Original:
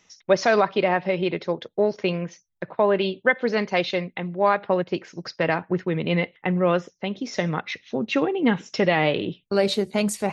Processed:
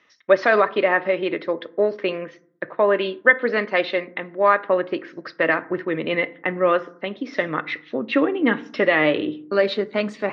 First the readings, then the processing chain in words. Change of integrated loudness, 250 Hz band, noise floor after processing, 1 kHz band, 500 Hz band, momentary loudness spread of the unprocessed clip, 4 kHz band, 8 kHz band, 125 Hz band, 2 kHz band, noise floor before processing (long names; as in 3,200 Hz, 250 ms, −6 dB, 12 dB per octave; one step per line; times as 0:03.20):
+2.5 dB, −0.5 dB, −55 dBFS, +1.5 dB, +2.5 dB, 10 LU, −1.0 dB, can't be measured, −8.5 dB, +5.5 dB, −68 dBFS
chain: loudspeaker in its box 150–4,000 Hz, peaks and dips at 170 Hz −9 dB, 310 Hz +4 dB, 570 Hz +4 dB, 810 Hz −5 dB, 1,200 Hz +7 dB, 1,800 Hz +8 dB
feedback delay network reverb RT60 0.59 s, low-frequency decay 1.45×, high-frequency decay 0.4×, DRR 14 dB